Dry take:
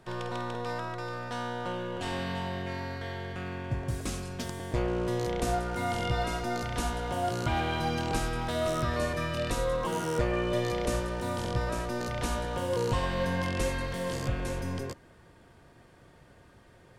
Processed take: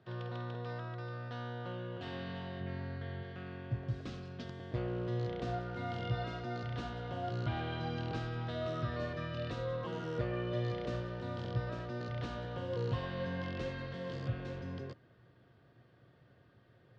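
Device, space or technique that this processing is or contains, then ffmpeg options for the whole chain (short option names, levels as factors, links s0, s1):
guitar cabinet: -filter_complex "[0:a]asettb=1/sr,asplit=3[s0][s1][s2];[s0]atrim=end=2.604[s3];[s1]atrim=start=2.6:end=3.23,asetpts=PTS-STARTPTS,afade=t=in:d=0.004:c=qsin,afade=t=out:st=0.626:d=0.004:c=qsin,bass=f=250:g=6,treble=f=4000:g=-6[s4];[s2]atrim=start=3.226[s5];[s3][s4]acrossfade=d=0.004:c1=hsin:c2=qsin[s6];[s6][s5]acrossfade=d=0.004:c1=qsin:c2=hsin,highpass=85,equalizer=f=120:t=q:w=4:g=9,equalizer=f=920:t=q:w=4:g=-7,equalizer=f=2300:t=q:w=4:g=-5,lowpass=f=4300:w=0.5412,lowpass=f=4300:w=1.3066,volume=0.398"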